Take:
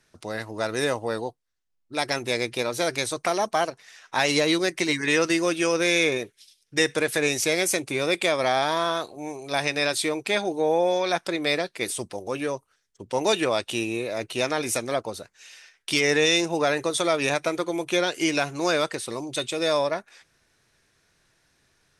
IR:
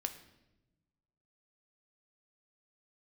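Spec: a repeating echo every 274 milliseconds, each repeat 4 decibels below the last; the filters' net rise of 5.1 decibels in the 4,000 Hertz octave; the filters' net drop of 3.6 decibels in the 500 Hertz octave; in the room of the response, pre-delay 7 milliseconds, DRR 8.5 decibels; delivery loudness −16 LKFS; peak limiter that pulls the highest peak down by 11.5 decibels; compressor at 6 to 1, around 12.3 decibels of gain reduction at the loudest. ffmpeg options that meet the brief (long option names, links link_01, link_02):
-filter_complex "[0:a]equalizer=frequency=500:width_type=o:gain=-4.5,equalizer=frequency=4000:width_type=o:gain=6,acompressor=threshold=-29dB:ratio=6,alimiter=limit=-24dB:level=0:latency=1,aecho=1:1:274|548|822|1096|1370|1644|1918|2192|2466:0.631|0.398|0.25|0.158|0.0994|0.0626|0.0394|0.0249|0.0157,asplit=2[link_01][link_02];[1:a]atrim=start_sample=2205,adelay=7[link_03];[link_02][link_03]afir=irnorm=-1:irlink=0,volume=-8.5dB[link_04];[link_01][link_04]amix=inputs=2:normalize=0,volume=17dB"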